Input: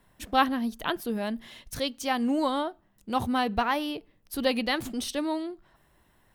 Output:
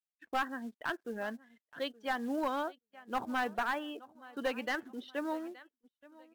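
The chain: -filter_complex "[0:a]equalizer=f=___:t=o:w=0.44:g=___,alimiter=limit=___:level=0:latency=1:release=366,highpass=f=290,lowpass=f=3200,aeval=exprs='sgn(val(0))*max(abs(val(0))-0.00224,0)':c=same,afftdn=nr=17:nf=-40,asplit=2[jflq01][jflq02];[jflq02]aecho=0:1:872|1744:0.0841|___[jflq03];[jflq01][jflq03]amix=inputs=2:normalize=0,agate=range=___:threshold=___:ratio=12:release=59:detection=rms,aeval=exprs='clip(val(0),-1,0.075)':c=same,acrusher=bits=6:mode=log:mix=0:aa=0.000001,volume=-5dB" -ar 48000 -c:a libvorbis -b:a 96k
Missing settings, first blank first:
1600, 8, -14dB, 0.0278, -23dB, -57dB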